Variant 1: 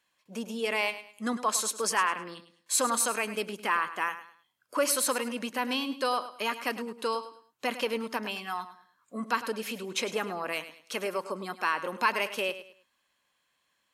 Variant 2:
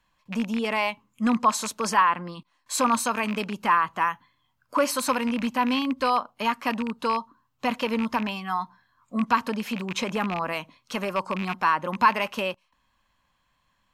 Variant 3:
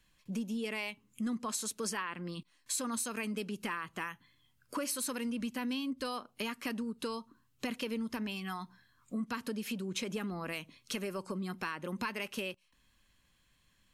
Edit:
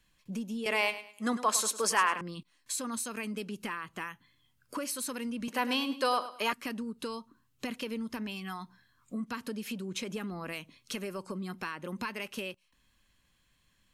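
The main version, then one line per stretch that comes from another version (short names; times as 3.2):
3
0.66–2.21 from 1
5.48–6.53 from 1
not used: 2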